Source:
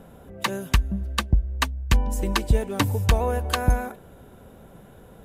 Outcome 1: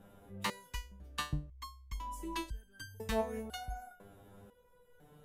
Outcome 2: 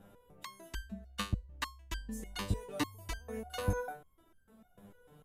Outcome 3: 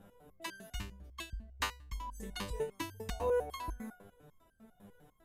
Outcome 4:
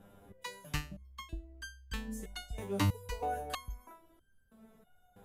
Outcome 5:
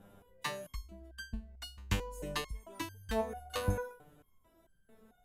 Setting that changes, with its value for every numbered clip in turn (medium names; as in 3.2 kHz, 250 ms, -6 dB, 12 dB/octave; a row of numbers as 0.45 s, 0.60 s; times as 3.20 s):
resonator arpeggio, rate: 2 Hz, 6.7 Hz, 10 Hz, 3.1 Hz, 4.5 Hz